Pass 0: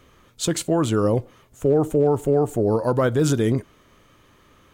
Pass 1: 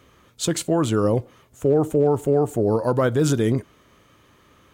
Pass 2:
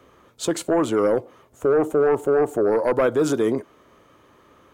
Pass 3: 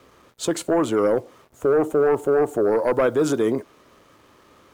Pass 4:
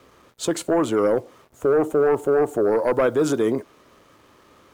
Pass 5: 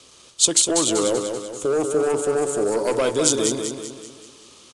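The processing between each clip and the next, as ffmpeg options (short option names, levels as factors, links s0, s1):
-af "highpass=47"
-filter_complex "[0:a]acrossover=split=270|1400[s0][s1][s2];[s0]acompressor=threshold=0.0224:ratio=6[s3];[s1]aeval=exprs='0.316*sin(PI/2*1.78*val(0)/0.316)':c=same[s4];[s3][s4][s2]amix=inputs=3:normalize=0,volume=0.631"
-af "acrusher=bits=8:mix=0:aa=0.5"
-af anull
-filter_complex "[0:a]aexciter=amount=7.6:drive=3.8:freq=2700,asplit=2[s0][s1];[s1]aecho=0:1:193|386|579|772|965|1158:0.501|0.241|0.115|0.0554|0.0266|0.0128[s2];[s0][s2]amix=inputs=2:normalize=0,aresample=22050,aresample=44100,volume=0.708"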